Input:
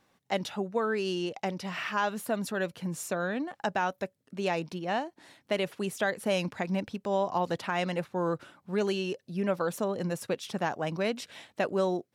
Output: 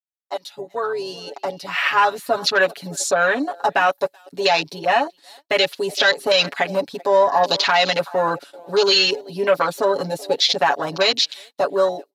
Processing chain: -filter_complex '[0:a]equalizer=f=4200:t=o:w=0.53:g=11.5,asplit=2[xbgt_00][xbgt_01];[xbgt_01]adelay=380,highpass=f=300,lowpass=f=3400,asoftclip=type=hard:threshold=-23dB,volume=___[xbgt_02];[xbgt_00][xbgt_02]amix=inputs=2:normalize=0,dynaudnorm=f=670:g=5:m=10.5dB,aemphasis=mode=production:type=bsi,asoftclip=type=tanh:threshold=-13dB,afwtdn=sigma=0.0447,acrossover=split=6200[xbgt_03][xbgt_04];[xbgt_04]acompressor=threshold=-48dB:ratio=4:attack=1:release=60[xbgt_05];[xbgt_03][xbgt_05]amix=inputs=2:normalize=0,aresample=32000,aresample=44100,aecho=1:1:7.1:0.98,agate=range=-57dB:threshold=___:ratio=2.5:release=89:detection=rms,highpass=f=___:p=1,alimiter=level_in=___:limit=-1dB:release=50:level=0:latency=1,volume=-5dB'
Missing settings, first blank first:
-17dB, -47dB, 490, 10dB